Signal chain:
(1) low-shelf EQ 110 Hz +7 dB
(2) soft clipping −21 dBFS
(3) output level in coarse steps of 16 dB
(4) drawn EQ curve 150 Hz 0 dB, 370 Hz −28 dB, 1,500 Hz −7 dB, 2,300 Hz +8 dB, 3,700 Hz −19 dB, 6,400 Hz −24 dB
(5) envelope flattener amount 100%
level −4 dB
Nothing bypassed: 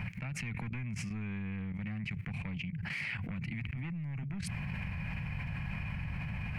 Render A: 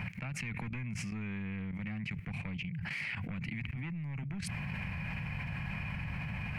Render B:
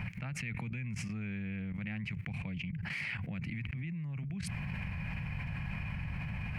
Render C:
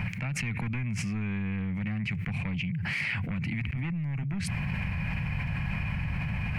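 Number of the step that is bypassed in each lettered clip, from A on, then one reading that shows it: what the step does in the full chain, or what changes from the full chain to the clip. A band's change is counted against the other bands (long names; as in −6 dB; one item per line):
1, 125 Hz band −2.0 dB
2, distortion level −10 dB
3, change in integrated loudness +7.0 LU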